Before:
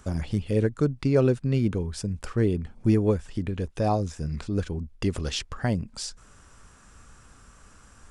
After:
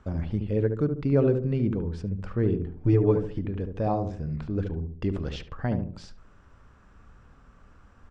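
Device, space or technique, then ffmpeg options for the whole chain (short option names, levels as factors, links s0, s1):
phone in a pocket: -filter_complex "[0:a]lowpass=4000,highshelf=f=2300:g=-9,asettb=1/sr,asplit=3[s0][s1][s2];[s0]atrim=end=2.754[s3];[s1]atrim=start=2.75:end=3.39,asetpts=PTS-STARTPTS,afade=t=in:d=0.004:c=qsin,afade=t=out:st=0.636:d=0.004:c=qsin,aecho=1:1:6.8:0.95,atrim=end_sample=28224[s4];[s2]atrim=start=3.386[s5];[s3][s4]acrossfade=d=0.004:c1=hsin:c2=qsin[s6];[s6][s5]acrossfade=d=0.004:c1=qsin:c2=hsin,asplit=2[s7][s8];[s8]adelay=72,lowpass=f=870:p=1,volume=0.562,asplit=2[s9][s10];[s10]adelay=72,lowpass=f=870:p=1,volume=0.42,asplit=2[s11][s12];[s12]adelay=72,lowpass=f=870:p=1,volume=0.42,asplit=2[s13][s14];[s14]adelay=72,lowpass=f=870:p=1,volume=0.42,asplit=2[s15][s16];[s16]adelay=72,lowpass=f=870:p=1,volume=0.42[s17];[s7][s9][s11][s13][s15][s17]amix=inputs=6:normalize=0,volume=0.794"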